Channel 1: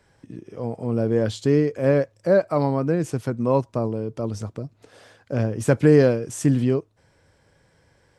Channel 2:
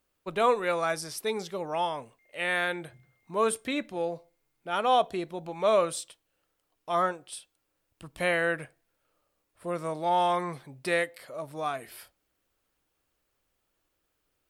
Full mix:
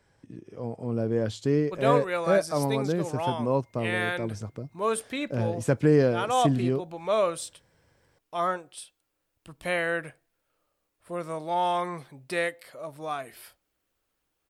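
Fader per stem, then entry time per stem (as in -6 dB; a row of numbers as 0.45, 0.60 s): -5.5, -1.0 dB; 0.00, 1.45 s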